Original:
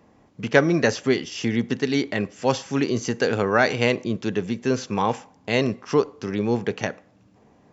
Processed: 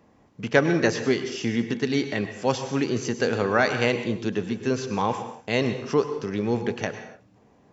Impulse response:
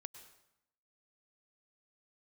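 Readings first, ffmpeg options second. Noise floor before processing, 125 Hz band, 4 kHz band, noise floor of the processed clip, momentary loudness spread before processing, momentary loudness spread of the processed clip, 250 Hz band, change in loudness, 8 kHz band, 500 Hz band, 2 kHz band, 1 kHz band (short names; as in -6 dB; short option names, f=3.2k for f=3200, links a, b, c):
-57 dBFS, -2.0 dB, -2.0 dB, -58 dBFS, 7 LU, 7 LU, -2.0 dB, -2.0 dB, n/a, -2.0 dB, -2.0 dB, -1.5 dB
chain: -filter_complex "[1:a]atrim=start_sample=2205,afade=t=out:st=0.35:d=0.01,atrim=end_sample=15876[a];[0:a][a]afir=irnorm=-1:irlink=0,volume=3.5dB"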